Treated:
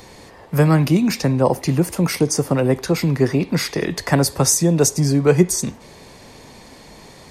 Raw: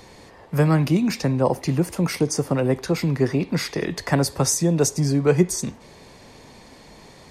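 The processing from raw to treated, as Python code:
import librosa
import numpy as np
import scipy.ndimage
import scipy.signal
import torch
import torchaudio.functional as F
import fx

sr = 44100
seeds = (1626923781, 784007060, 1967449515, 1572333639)

y = fx.high_shelf(x, sr, hz=10000.0, db=6.5)
y = y * 10.0 ** (3.5 / 20.0)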